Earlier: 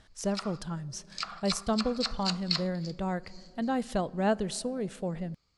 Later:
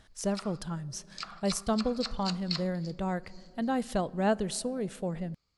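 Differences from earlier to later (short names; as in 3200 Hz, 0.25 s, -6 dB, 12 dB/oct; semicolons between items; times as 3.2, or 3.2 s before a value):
speech: remove LPF 9700 Hz 12 dB/oct; background -4.5 dB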